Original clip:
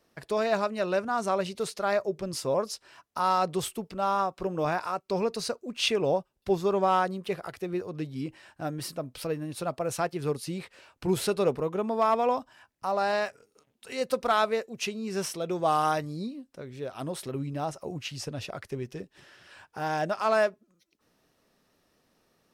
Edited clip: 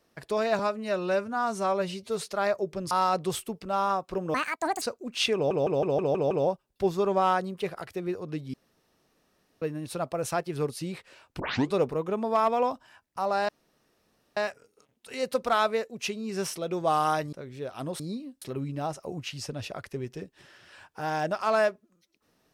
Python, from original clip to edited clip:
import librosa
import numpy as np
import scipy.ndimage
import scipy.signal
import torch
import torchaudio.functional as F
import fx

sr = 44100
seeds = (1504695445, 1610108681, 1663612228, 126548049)

y = fx.edit(x, sr, fx.stretch_span(start_s=0.59, length_s=1.08, factor=1.5),
    fx.cut(start_s=2.37, length_s=0.83),
    fx.speed_span(start_s=4.63, length_s=0.81, speed=1.7),
    fx.stutter(start_s=5.97, slice_s=0.16, count=7),
    fx.room_tone_fill(start_s=8.2, length_s=1.08),
    fx.tape_start(start_s=11.06, length_s=0.33),
    fx.insert_room_tone(at_s=13.15, length_s=0.88),
    fx.move(start_s=16.11, length_s=0.42, to_s=17.2), tone=tone)